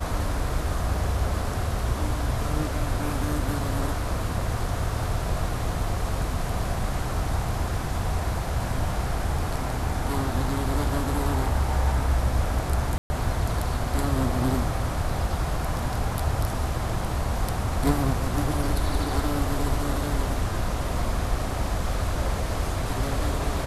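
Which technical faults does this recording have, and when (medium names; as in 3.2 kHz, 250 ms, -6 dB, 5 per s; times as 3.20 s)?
12.98–13.10 s: dropout 120 ms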